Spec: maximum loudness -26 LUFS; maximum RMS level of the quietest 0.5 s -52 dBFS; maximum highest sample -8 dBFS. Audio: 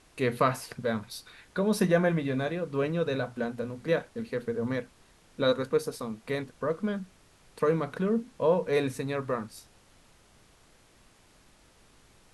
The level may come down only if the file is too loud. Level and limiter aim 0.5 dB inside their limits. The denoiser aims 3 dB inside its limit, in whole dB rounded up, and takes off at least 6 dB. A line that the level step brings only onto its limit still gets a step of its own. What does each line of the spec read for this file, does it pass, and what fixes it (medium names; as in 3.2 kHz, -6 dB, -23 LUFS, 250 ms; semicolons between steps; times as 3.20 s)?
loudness -30.0 LUFS: pass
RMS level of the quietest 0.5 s -60 dBFS: pass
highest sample -11.0 dBFS: pass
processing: none needed